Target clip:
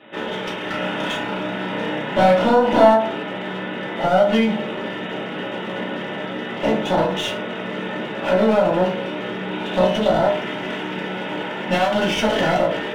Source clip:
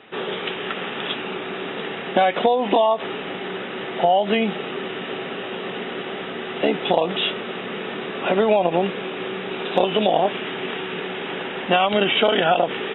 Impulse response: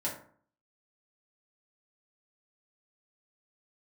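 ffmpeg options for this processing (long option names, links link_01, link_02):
-filter_complex "[0:a]aeval=exprs='clip(val(0),-1,0.0596)':channel_layout=same,asettb=1/sr,asplit=3[link_01][link_02][link_03];[link_01]atrim=end=0.694[link_04];[link_02]atrim=start=0.69:end=2.94,asetpts=PTS-STARTPTS,afade=type=in:duration=0.004:curve=qsin,afade=type=out:start_time=2.246:duration=0.004:curve=qsin,asplit=2[link_05][link_06];[link_06]adelay=33,volume=-3dB[link_07];[link_05][link_07]amix=inputs=2:normalize=0,atrim=end_sample=99225[link_08];[link_03]atrim=start=2.936[link_09];[link_04][link_08]acrossfade=duration=0.004:curve1=hsin:curve2=qsin[link_10];[link_10][link_09]acrossfade=duration=0.004:curve1=qsin:curve2=hsin[link_11];[1:a]atrim=start_sample=2205[link_12];[link_11][link_12]afir=irnorm=-1:irlink=0,volume=-2dB"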